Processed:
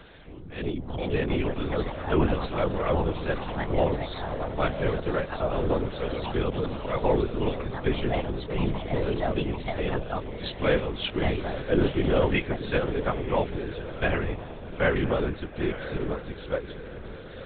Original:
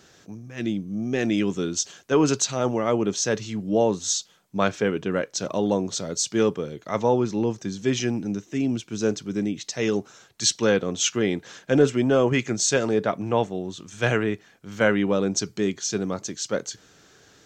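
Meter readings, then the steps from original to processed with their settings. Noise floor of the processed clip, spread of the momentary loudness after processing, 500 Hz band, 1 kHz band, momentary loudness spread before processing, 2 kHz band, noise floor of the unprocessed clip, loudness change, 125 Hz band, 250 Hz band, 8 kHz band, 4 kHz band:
-41 dBFS, 8 LU, -3.0 dB, -0.5 dB, 9 LU, -2.5 dB, -56 dBFS, -4.0 dB, +0.5 dB, -5.5 dB, under -40 dB, -6.5 dB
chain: upward compressor, threshold -36 dBFS; comb of notches 220 Hz; echo that smears into a reverb 972 ms, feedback 46%, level -10 dB; ever faster or slower copies 133 ms, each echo +5 st, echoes 3, each echo -6 dB; LPC vocoder at 8 kHz whisper; trim -2 dB

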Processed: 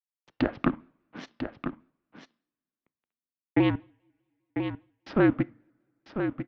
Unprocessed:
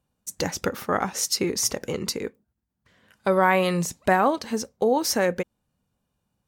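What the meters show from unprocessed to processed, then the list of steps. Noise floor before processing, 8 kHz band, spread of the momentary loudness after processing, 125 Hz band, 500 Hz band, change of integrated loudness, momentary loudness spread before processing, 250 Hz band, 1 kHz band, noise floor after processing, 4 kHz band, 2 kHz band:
-79 dBFS, under -35 dB, 18 LU, -1.0 dB, -9.5 dB, -5.0 dB, 11 LU, +0.5 dB, -14.0 dB, under -85 dBFS, -16.0 dB, -9.0 dB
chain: local Wiener filter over 15 samples; tilt EQ -2 dB/octave; in parallel at 0 dB: compression, threshold -26 dBFS, peak gain reduction 12.5 dB; on the sum: trance gate ".xxx..x......" 80 bpm -60 dB; crossover distortion -43 dBFS; delay 996 ms -8 dB; two-slope reverb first 0.49 s, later 2.5 s, from -27 dB, DRR 20 dB; mistuned SSB -240 Hz 410–3400 Hz; vibrato with a chosen wave square 5 Hz, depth 100 cents

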